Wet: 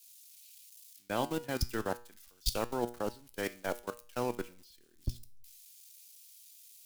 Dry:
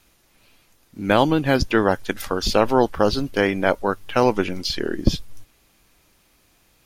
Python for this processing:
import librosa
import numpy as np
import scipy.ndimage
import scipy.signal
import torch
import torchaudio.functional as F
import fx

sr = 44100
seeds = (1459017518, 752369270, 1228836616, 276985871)

y = x + 0.5 * 10.0 ** (-14.5 / 20.0) * np.diff(np.sign(x), prepend=np.sign(x[:1]))
y = fx.high_shelf(y, sr, hz=11000.0, db=-5.0)
y = fx.level_steps(y, sr, step_db=19)
y = fx.comb_fb(y, sr, f0_hz=120.0, decay_s=0.55, harmonics='all', damping=0.0, mix_pct=60)
y = fx.band_widen(y, sr, depth_pct=100)
y = y * 10.0 ** (-8.0 / 20.0)